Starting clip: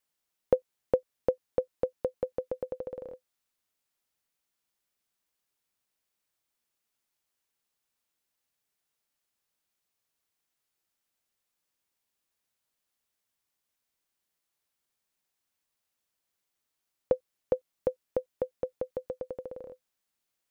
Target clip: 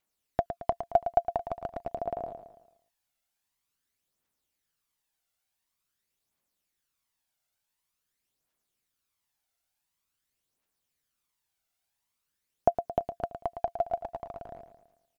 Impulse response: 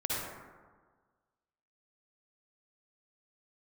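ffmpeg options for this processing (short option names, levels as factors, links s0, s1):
-af "asetrate=59535,aresample=44100,aphaser=in_gain=1:out_gain=1:delay=1.5:decay=0.52:speed=0.47:type=triangular,aecho=1:1:111|222|333|444|555:0.335|0.154|0.0709|0.0326|0.015"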